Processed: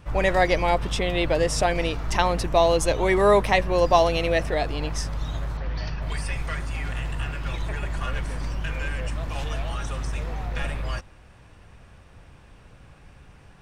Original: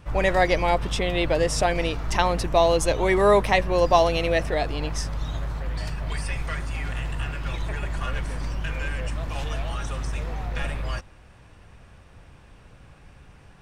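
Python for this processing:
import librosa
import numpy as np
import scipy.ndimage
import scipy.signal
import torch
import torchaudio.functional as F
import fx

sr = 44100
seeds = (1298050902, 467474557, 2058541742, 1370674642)

y = fx.steep_lowpass(x, sr, hz=6200.0, slope=96, at=(5.57, 6.02))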